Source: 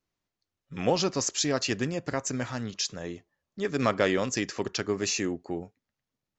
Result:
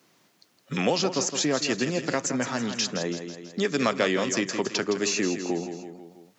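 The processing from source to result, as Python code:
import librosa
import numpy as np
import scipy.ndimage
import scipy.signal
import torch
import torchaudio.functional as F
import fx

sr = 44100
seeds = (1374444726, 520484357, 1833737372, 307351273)

y = scipy.signal.sosfilt(scipy.signal.butter(4, 150.0, 'highpass', fs=sr, output='sos'), x)
y = fx.echo_feedback(y, sr, ms=163, feedback_pct=37, wet_db=-10.5)
y = fx.band_squash(y, sr, depth_pct=70)
y = y * librosa.db_to_amplitude(2.5)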